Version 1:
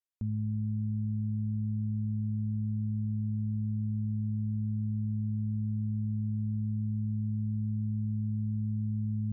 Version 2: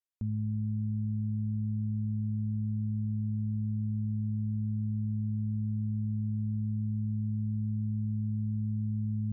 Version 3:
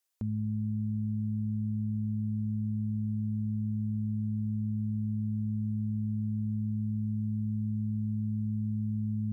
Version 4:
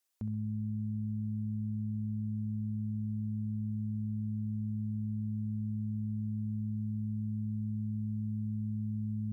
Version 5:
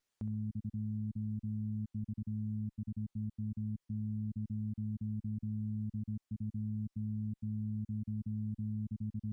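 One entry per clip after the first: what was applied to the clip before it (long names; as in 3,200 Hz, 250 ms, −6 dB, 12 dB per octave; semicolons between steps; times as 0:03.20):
no processing that can be heard
bass and treble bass −10 dB, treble +5 dB; level +8.5 dB
brickwall limiter −30 dBFS, peak gain reduction 10 dB; feedback echo with a high-pass in the loop 65 ms, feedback 47%, level −9 dB
time-frequency cells dropped at random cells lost 25%; windowed peak hold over 3 samples; level −2 dB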